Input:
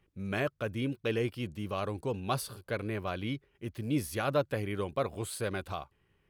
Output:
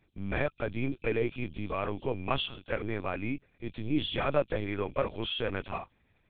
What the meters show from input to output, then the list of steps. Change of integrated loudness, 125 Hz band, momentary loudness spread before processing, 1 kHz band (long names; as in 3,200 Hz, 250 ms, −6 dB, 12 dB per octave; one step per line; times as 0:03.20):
+1.5 dB, −1.0 dB, 8 LU, +1.0 dB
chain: hearing-aid frequency compression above 2,300 Hz 4 to 1
linear-prediction vocoder at 8 kHz pitch kept
level +1.5 dB